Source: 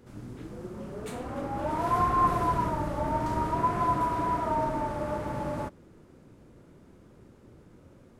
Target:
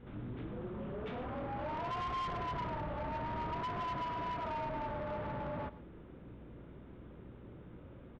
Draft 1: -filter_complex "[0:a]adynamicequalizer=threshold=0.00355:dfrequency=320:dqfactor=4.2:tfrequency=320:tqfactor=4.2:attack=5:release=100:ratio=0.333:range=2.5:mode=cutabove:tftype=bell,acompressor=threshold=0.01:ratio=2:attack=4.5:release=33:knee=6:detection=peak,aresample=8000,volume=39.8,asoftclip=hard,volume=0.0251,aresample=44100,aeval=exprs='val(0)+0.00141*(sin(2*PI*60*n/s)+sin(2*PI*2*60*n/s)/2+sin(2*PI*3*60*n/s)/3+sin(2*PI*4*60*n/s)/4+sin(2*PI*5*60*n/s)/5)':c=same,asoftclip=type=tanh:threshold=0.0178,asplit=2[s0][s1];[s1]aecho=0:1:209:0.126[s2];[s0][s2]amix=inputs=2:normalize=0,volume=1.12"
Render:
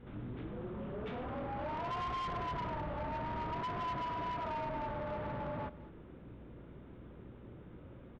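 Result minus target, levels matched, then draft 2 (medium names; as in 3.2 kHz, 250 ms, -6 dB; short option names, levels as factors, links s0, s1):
echo 86 ms late
-filter_complex "[0:a]adynamicequalizer=threshold=0.00355:dfrequency=320:dqfactor=4.2:tfrequency=320:tqfactor=4.2:attack=5:release=100:ratio=0.333:range=2.5:mode=cutabove:tftype=bell,acompressor=threshold=0.01:ratio=2:attack=4.5:release=33:knee=6:detection=peak,aresample=8000,volume=39.8,asoftclip=hard,volume=0.0251,aresample=44100,aeval=exprs='val(0)+0.00141*(sin(2*PI*60*n/s)+sin(2*PI*2*60*n/s)/2+sin(2*PI*3*60*n/s)/3+sin(2*PI*4*60*n/s)/4+sin(2*PI*5*60*n/s)/5)':c=same,asoftclip=type=tanh:threshold=0.0178,asplit=2[s0][s1];[s1]aecho=0:1:123:0.126[s2];[s0][s2]amix=inputs=2:normalize=0,volume=1.12"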